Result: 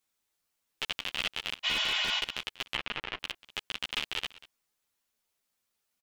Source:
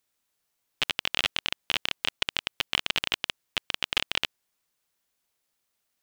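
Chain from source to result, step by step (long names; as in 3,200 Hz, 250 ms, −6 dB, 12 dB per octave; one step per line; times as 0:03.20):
0:01.67–0:02.17: healed spectral selection 600–7,600 Hz after
0:02.65–0:03.18: treble cut that deepens with the level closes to 1,600 Hz, closed at −25.5 dBFS
in parallel at +1 dB: brickwall limiter −15 dBFS, peak gain reduction 10 dB
on the sum: single-tap delay 190 ms −19 dB
string-ensemble chorus
level −6 dB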